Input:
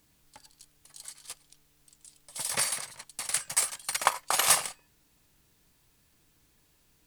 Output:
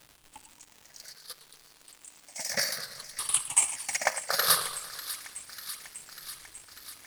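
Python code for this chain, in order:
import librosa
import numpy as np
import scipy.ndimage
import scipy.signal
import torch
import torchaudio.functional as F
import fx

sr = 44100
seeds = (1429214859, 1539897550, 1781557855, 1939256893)

p1 = fx.spec_ripple(x, sr, per_octave=0.63, drift_hz=-0.63, depth_db=16)
p2 = p1 + fx.echo_wet_highpass(p1, sr, ms=595, feedback_pct=68, hz=1700.0, wet_db=-14.5, dry=0)
p3 = fx.dmg_crackle(p2, sr, seeds[0], per_s=300.0, level_db=-38.0)
p4 = fx.low_shelf(p3, sr, hz=140.0, db=-8.5, at=(1.15, 2.51))
p5 = fx.rider(p4, sr, range_db=5, speed_s=2.0)
p6 = p4 + (p5 * 10.0 ** (-2.0 / 20.0))
p7 = fx.echo_warbled(p6, sr, ms=113, feedback_pct=68, rate_hz=2.8, cents=147, wet_db=-15.5)
y = p7 * 10.0 ** (-8.0 / 20.0)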